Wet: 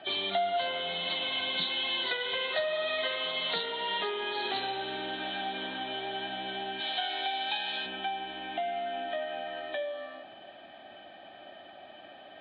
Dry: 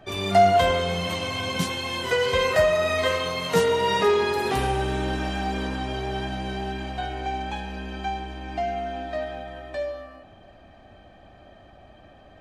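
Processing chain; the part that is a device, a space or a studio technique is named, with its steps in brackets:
0:06.80–0:07.86: RIAA equalisation recording
hearing aid with frequency lowering (hearing-aid frequency compression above 3,000 Hz 4 to 1; downward compressor 3 to 1, threshold −35 dBFS, peak gain reduction 16.5 dB; loudspeaker in its box 400–6,900 Hz, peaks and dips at 470 Hz −9 dB, 1,100 Hz −8 dB, 3,800 Hz +7 dB)
level +4.5 dB

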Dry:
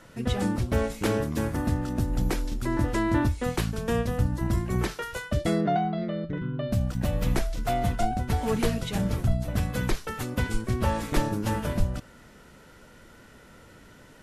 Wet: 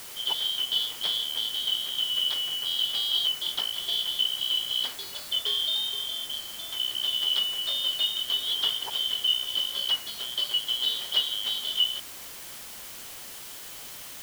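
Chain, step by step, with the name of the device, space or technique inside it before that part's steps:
0:06.40–0:06.80: low-shelf EQ 400 Hz −10 dB
split-band scrambled radio (band-splitting scrambler in four parts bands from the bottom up 3412; band-pass filter 330–3,200 Hz; white noise bed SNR 12 dB)

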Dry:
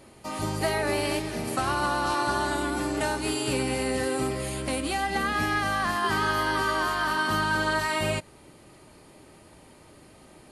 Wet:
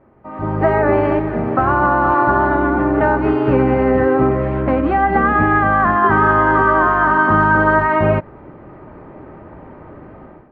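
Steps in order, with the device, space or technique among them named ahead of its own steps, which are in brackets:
action camera in a waterproof case (low-pass filter 1,600 Hz 24 dB per octave; automatic gain control gain up to 15.5 dB; AAC 96 kbit/s 48,000 Hz)

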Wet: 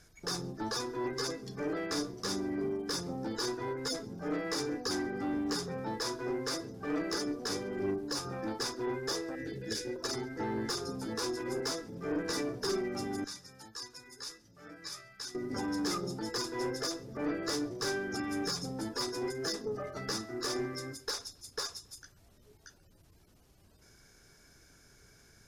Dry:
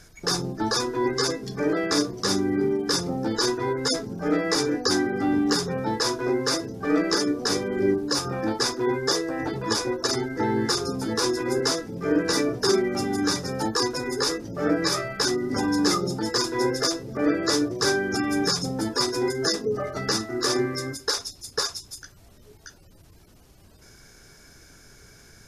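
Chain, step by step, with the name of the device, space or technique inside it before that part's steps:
0:09.35–0:09.96: elliptic band-stop filter 530–1,600 Hz
0:13.24–0:15.35: guitar amp tone stack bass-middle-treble 5-5-5
rockabilly slapback (tube saturation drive 17 dB, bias 0.3; tape delay 136 ms, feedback 34%, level −23 dB, low-pass 4,900 Hz)
level −9 dB

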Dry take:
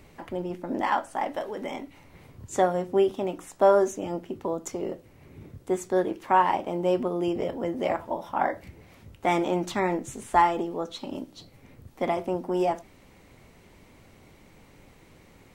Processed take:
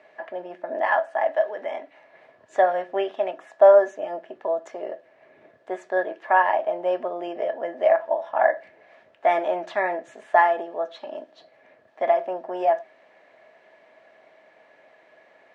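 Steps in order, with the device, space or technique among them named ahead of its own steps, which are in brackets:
tin-can telephone (band-pass filter 550–2,900 Hz; hollow resonant body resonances 640/1,700 Hz, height 18 dB, ringing for 55 ms)
0:02.67–0:03.31: dynamic equaliser 2,500 Hz, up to +6 dB, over −44 dBFS, Q 0.71

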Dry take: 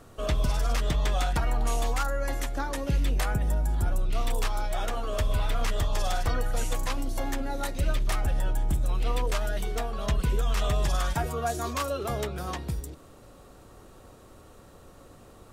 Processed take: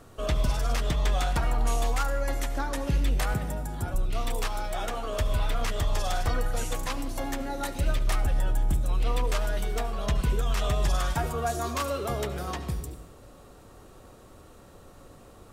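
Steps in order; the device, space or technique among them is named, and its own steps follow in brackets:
compressed reverb return (on a send at −10 dB: convolution reverb RT60 1.1 s, pre-delay 66 ms + downward compressor, threshold −24 dBFS, peak gain reduction 7.5 dB)
0:03.34–0:03.94: on the sum: high-pass filter 81 Hz 12 dB per octave

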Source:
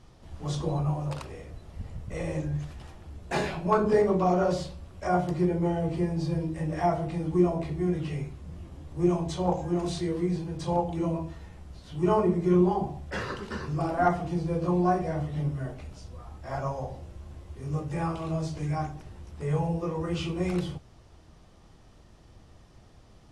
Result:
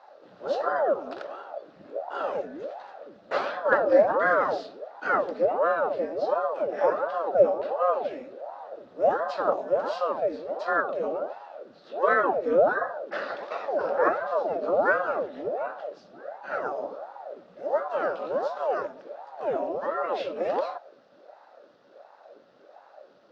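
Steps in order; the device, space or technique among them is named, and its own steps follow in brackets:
voice changer toy (ring modulator whose carrier an LFO sweeps 500 Hz, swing 80%, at 1.4 Hz; loudspeaker in its box 500–4,200 Hz, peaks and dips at 570 Hz +10 dB, 970 Hz −7 dB, 1,400 Hz +4 dB, 2,200 Hz −8 dB, 3,100 Hz −6 dB)
level +5 dB

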